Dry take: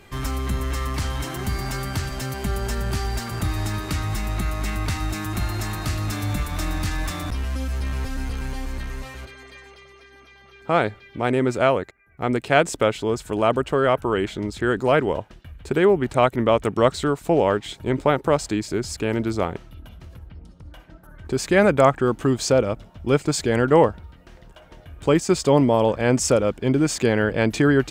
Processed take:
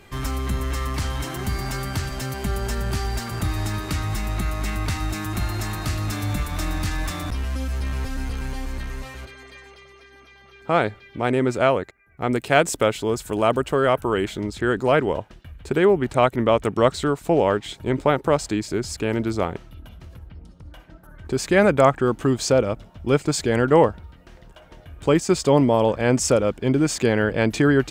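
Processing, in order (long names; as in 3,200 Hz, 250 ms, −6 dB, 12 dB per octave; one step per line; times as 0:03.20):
0:12.31–0:14.42: high-shelf EQ 10,000 Hz +11.5 dB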